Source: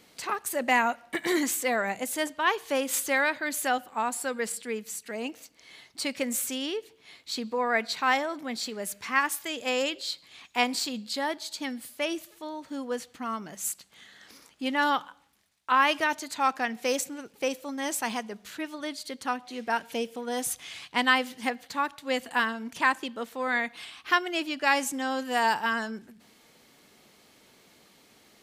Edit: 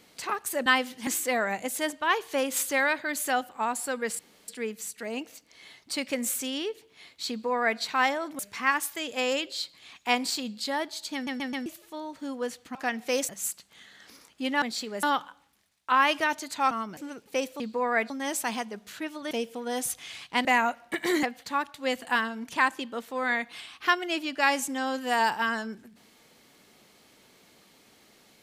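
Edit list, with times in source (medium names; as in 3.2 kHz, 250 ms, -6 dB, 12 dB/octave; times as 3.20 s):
0.66–1.44 s: swap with 21.06–21.47 s
4.56 s: insert room tone 0.29 s
7.38–7.88 s: copy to 17.68 s
8.47–8.88 s: move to 14.83 s
11.63 s: stutter in place 0.13 s, 4 plays
13.24–13.50 s: swap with 16.51–17.05 s
18.89–19.92 s: delete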